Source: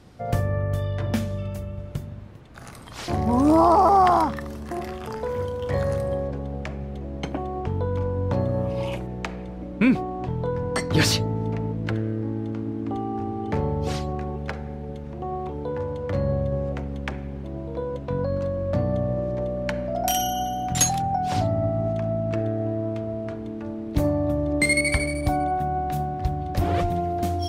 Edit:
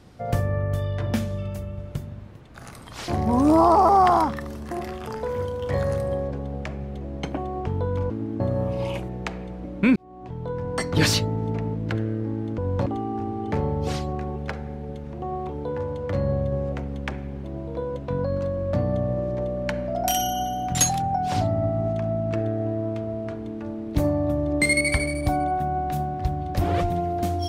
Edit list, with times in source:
0:08.10–0:08.38: swap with 0:12.56–0:12.86
0:09.94–0:11.15: fade in equal-power

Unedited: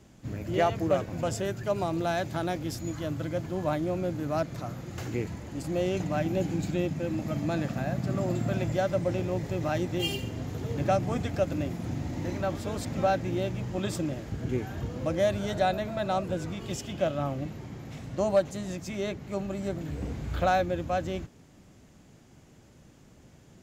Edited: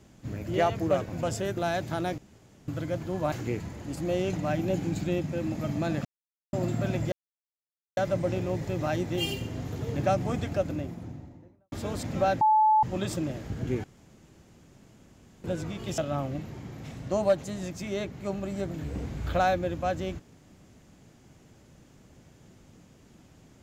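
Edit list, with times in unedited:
0:01.57–0:02.00: remove
0:02.61–0:03.11: fill with room tone
0:03.75–0:04.99: remove
0:07.72–0:08.20: silence
0:08.79: splice in silence 0.85 s
0:11.17–0:12.54: fade out and dull
0:13.23–0:13.65: beep over 865 Hz −17.5 dBFS
0:14.66–0:16.26: fill with room tone
0:16.80–0:17.05: remove

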